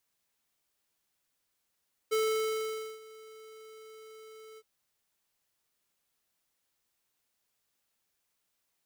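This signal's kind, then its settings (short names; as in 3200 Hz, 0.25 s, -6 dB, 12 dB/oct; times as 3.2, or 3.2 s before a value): ADSR square 438 Hz, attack 19 ms, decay 0.859 s, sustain -23 dB, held 2.47 s, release 45 ms -27.5 dBFS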